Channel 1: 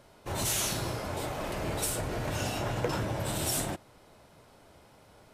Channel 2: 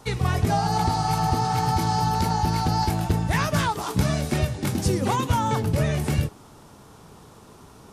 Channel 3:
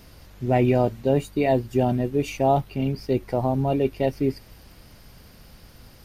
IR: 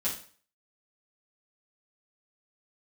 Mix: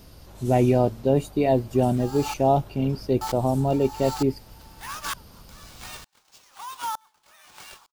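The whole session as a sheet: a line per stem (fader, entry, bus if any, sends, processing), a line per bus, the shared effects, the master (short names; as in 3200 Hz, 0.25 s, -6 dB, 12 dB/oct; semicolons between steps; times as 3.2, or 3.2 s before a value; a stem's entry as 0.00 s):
-16.0 dB, 0.00 s, no send, dry
+2.0 dB, 1.50 s, muted 2.34–3.21, no send, steep high-pass 900 Hz 36 dB/oct; sample-rate reducer 12000 Hz, jitter 0%; dB-ramp tremolo swelling 1.1 Hz, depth 33 dB
+0.5 dB, 0.00 s, no send, dry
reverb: off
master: bell 2000 Hz -6.5 dB 0.91 oct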